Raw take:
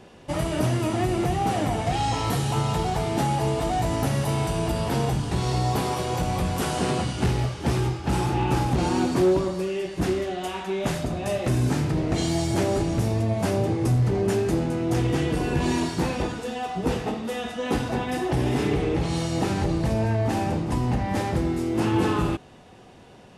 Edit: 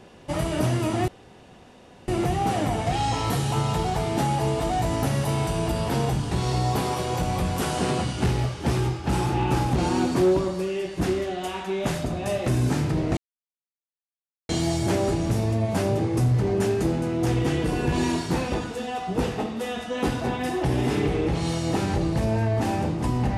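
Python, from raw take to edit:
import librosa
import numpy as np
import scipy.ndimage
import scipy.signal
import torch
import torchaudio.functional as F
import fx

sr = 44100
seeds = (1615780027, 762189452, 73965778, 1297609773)

y = fx.edit(x, sr, fx.insert_room_tone(at_s=1.08, length_s=1.0),
    fx.insert_silence(at_s=12.17, length_s=1.32), tone=tone)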